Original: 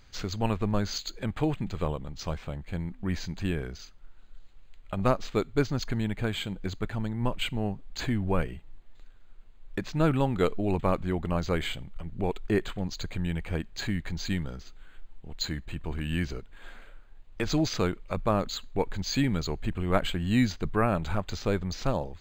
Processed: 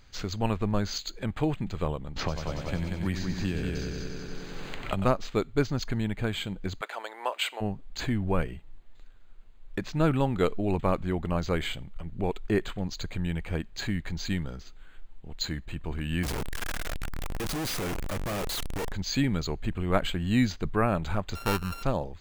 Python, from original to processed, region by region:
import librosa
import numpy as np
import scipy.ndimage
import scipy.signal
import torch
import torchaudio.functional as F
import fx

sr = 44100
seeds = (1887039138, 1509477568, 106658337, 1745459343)

y = fx.chain(x, sr, fx.echo_heads(ms=93, heads='first and second', feedback_pct=49, wet_db=-7.0),
    fx.band_squash(depth_pct=100), at=(2.16, 5.05))
y = fx.spec_clip(y, sr, under_db=13, at=(6.8, 7.6), fade=0.02)
y = fx.highpass(y, sr, hz=530.0, slope=24, at=(6.8, 7.6), fade=0.02)
y = fx.chain(y, sr, fx.clip_1bit(),
    fx.peak_eq(hz=4200.0, db=-3.0, octaves=0.85), at=(16.23, 18.92))
y = fx.chain(y, sr, fx.sample_sort(block=32),
    fx.high_shelf(hz=8600.0, db=-3.5),
    fx.resample_bad(factor=3, down='filtered', up='hold'), at=(21.35, 21.83))